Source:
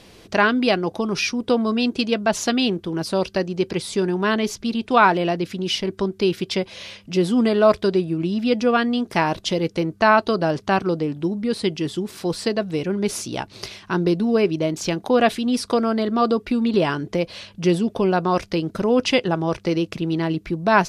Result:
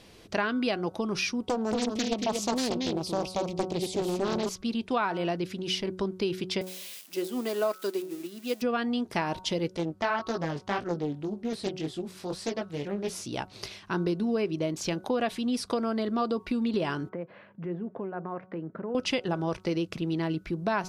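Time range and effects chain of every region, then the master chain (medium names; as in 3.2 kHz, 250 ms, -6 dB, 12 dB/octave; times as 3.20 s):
1.46–4.49 s: Butterworth band-stop 1.5 kHz, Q 1.2 + delay 230 ms -4.5 dB + loudspeaker Doppler distortion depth 0.61 ms
6.61–8.62 s: zero-crossing glitches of -20.5 dBFS + high-pass 260 Hz 24 dB/octave + upward expansion, over -35 dBFS
9.77–13.26 s: chorus 1.8 Hz, delay 17 ms, depth 4.2 ms + loudspeaker Doppler distortion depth 0.4 ms
17.09–18.95 s: Chebyshev band-pass 140–1800 Hz, order 3 + compression 2:1, threshold -31 dBFS
whole clip: de-hum 185.4 Hz, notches 8; compression 6:1, threshold -18 dBFS; trim -6 dB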